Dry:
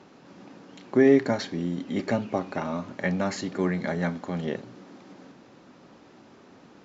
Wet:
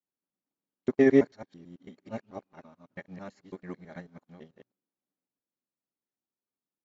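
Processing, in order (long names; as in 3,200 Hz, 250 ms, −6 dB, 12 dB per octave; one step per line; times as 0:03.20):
reversed piece by piece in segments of 110 ms
expander for the loud parts 2.5 to 1, over −47 dBFS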